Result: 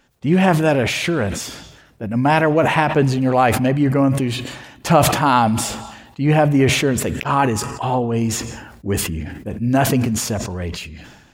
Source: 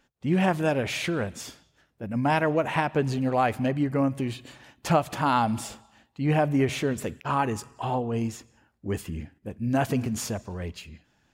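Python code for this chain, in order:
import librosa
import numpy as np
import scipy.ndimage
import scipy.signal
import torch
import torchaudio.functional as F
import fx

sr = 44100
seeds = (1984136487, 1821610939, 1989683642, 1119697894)

y = fx.sustainer(x, sr, db_per_s=50.0)
y = y * librosa.db_to_amplitude(8.0)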